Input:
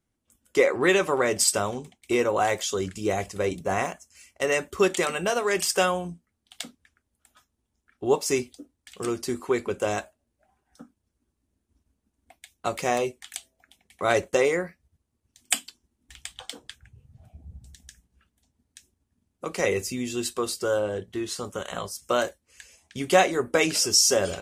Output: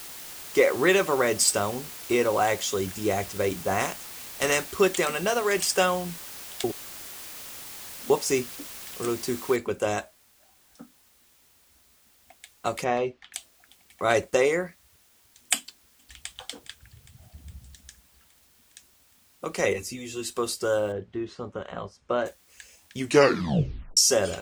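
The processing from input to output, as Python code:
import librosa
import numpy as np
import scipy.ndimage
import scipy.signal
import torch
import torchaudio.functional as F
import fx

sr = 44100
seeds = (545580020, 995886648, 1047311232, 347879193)

y = fx.spec_flatten(x, sr, power=0.67, at=(3.79, 4.7), fade=0.02)
y = fx.noise_floor_step(y, sr, seeds[0], at_s=9.56, before_db=-41, after_db=-61, tilt_db=0.0)
y = fx.air_absorb(y, sr, metres=230.0, at=(12.83, 13.33), fade=0.02)
y = fx.echo_throw(y, sr, start_s=15.58, length_s=0.78, ms=410, feedback_pct=70, wet_db=-15.5)
y = fx.ensemble(y, sr, at=(19.73, 20.3))
y = fx.spacing_loss(y, sr, db_at_10k=31, at=(20.92, 22.26))
y = fx.edit(y, sr, fx.reverse_span(start_s=6.64, length_s=1.46),
    fx.tape_stop(start_s=22.97, length_s=1.0), tone=tone)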